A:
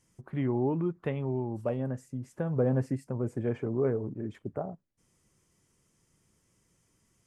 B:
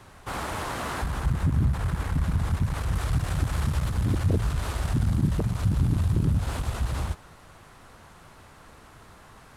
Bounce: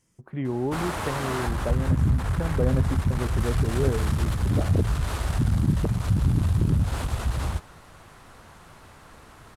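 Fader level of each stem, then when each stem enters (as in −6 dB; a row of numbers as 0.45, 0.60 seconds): +1.0, +1.5 decibels; 0.00, 0.45 seconds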